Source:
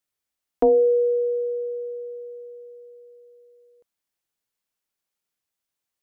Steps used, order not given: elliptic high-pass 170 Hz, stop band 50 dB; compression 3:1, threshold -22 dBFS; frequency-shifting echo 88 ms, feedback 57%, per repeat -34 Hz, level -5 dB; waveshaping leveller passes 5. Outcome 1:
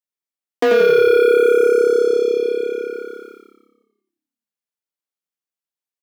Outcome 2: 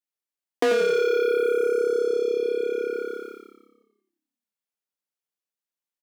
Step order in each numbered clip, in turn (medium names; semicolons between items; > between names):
compression > waveshaping leveller > elliptic high-pass > frequency-shifting echo; waveshaping leveller > frequency-shifting echo > compression > elliptic high-pass